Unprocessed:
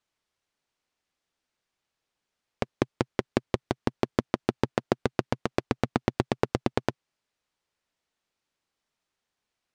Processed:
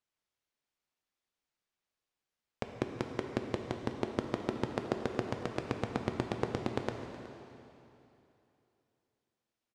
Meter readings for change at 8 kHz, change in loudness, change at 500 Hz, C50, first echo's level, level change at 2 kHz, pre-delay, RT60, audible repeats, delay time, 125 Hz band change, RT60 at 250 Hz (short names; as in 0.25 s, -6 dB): -7.0 dB, -7.0 dB, -6.5 dB, 5.0 dB, -19.0 dB, -7.0 dB, 6 ms, 3.0 s, 1, 0.37 s, -6.5 dB, 3.0 s